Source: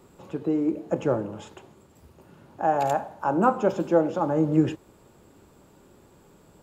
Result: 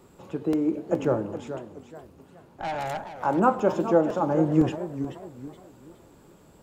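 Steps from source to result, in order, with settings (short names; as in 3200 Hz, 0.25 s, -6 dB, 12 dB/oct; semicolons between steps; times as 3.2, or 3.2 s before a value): 1.33–3.16 tube stage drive 27 dB, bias 0.65; crackling interface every 0.51 s, samples 128, repeat, from 0.53; warbling echo 0.425 s, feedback 35%, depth 218 cents, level -11 dB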